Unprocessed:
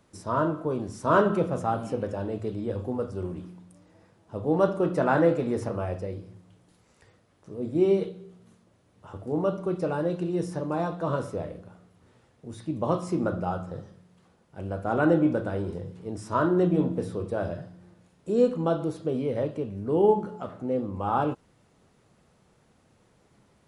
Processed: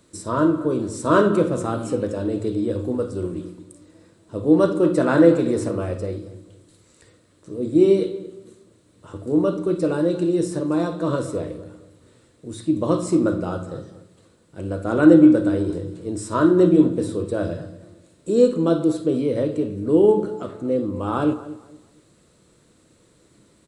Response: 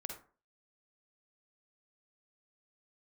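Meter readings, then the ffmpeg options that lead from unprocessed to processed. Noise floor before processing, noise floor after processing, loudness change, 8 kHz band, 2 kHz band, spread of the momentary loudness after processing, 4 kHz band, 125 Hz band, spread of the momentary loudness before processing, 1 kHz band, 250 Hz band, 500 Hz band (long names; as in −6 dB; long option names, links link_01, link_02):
−64 dBFS, −58 dBFS, +7.0 dB, can't be measured, +3.5 dB, 16 LU, +8.0 dB, +4.0 dB, 16 LU, +0.5 dB, +9.5 dB, +6.0 dB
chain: -filter_complex "[0:a]equalizer=frequency=315:width_type=o:width=0.33:gain=9,equalizer=frequency=500:width_type=o:width=0.33:gain=3,equalizer=frequency=800:width_type=o:width=0.33:gain=-10,equalizer=frequency=4000:width_type=o:width=0.33:gain=8,equalizer=frequency=8000:width_type=o:width=0.33:gain=12,asplit=2[link_01][link_02];[link_02]adelay=231,lowpass=frequency=2000:poles=1,volume=-15.5dB,asplit=2[link_03][link_04];[link_04]adelay=231,lowpass=frequency=2000:poles=1,volume=0.28,asplit=2[link_05][link_06];[link_06]adelay=231,lowpass=frequency=2000:poles=1,volume=0.28[link_07];[link_01][link_03][link_05][link_07]amix=inputs=4:normalize=0,asplit=2[link_08][link_09];[1:a]atrim=start_sample=2205,highshelf=frequency=7000:gain=10.5[link_10];[link_09][link_10]afir=irnorm=-1:irlink=0,volume=-5.5dB[link_11];[link_08][link_11]amix=inputs=2:normalize=0,volume=1dB"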